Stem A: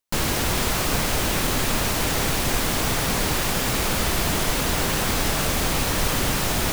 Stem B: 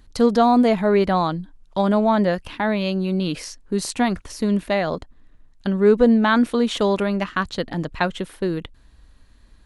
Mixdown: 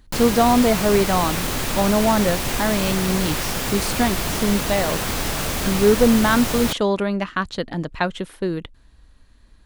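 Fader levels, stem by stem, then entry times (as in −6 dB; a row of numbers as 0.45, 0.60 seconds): −1.5, −0.5 decibels; 0.00, 0.00 seconds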